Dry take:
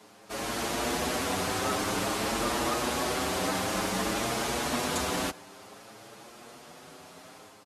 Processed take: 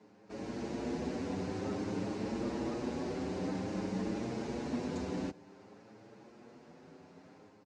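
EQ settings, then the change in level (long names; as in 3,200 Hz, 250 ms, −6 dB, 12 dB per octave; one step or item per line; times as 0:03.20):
dynamic equaliser 1,400 Hz, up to −5 dB, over −44 dBFS, Q 0.71
loudspeaker in its box 140–7,000 Hz, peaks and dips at 140 Hz −4 dB, 670 Hz −6 dB, 1,200 Hz −7 dB, 3,300 Hz −7 dB
spectral tilt −3.5 dB per octave
−7.5 dB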